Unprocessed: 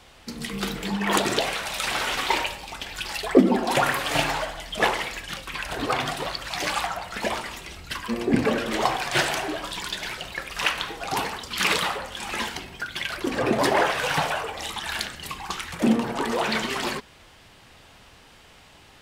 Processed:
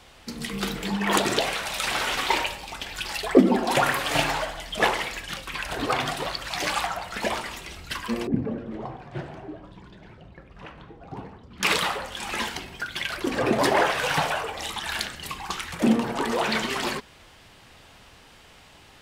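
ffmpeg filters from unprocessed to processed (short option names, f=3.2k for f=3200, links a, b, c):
-filter_complex "[0:a]asettb=1/sr,asplit=3[a][b][c];[a]atrim=end=8.274[d];[b]atrim=start=8.27:end=11.63,asetpts=PTS-STARTPTS,afade=t=in:d=0.004:c=qsin,afade=t=out:st=3.356:d=0.004:c=qsin,bandpass=f=110:t=q:w=0.68[e];[c]atrim=start=11.626[f];[d][e]acrossfade=d=0.004:c1=hsin:c2=qsin[g];[g][f]acrossfade=d=0.004:c1=qsin:c2=hsin"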